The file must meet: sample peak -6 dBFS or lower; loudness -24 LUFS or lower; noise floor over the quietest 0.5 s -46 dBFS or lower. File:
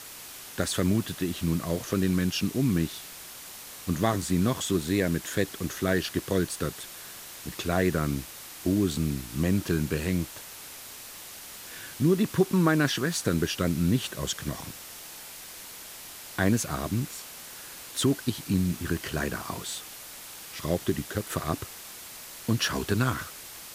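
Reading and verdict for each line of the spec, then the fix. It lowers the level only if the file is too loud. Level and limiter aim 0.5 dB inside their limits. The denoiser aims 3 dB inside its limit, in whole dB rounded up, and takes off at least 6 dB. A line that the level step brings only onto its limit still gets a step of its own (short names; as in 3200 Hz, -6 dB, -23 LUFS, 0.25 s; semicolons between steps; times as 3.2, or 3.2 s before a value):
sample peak -9.5 dBFS: OK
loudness -28.5 LUFS: OK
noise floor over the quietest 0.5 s -44 dBFS: fail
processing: denoiser 6 dB, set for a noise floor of -44 dBFS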